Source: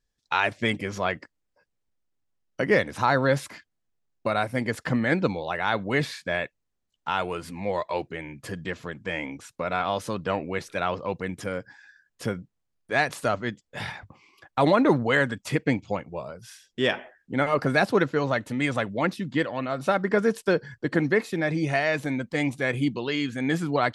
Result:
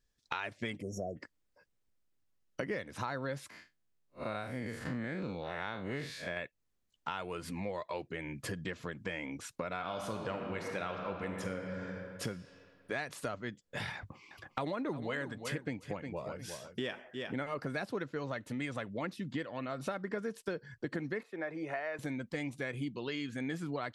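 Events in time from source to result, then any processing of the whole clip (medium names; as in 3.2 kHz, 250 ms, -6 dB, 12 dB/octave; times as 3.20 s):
0.82–1.17 s: spectral selection erased 750–5400 Hz
3.50–6.37 s: spectral blur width 113 ms
9.76–12.24 s: reverb throw, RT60 2.1 s, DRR 2.5 dB
13.95–17.51 s: feedback delay 357 ms, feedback 15%, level -12.5 dB
21.23–21.99 s: three-band isolator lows -18 dB, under 370 Hz, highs -17 dB, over 2 kHz
whole clip: peaking EQ 800 Hz -3 dB 0.51 oct; compression 5:1, threshold -36 dBFS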